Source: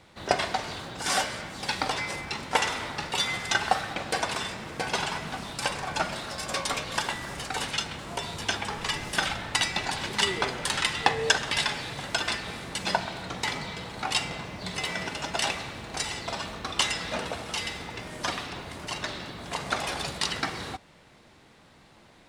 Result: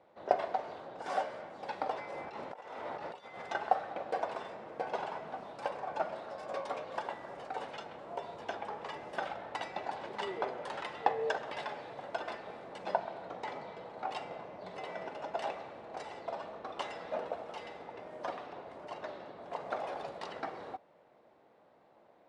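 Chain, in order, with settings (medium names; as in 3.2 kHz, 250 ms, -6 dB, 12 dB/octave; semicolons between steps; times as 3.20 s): 2.09–3.42 s: compressor with a negative ratio -36 dBFS, ratio -1; band-pass filter 600 Hz, Q 1.8; trim -1 dB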